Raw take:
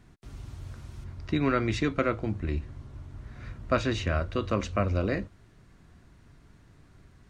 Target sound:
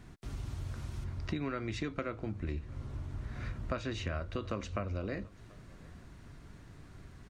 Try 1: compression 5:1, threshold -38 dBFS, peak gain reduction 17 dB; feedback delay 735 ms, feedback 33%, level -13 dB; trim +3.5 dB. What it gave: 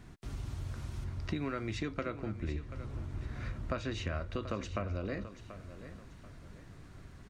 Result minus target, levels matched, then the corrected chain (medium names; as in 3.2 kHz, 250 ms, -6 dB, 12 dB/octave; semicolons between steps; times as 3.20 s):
echo-to-direct +12 dB
compression 5:1, threshold -38 dBFS, peak gain reduction 17 dB; feedback delay 735 ms, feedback 33%, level -25 dB; trim +3.5 dB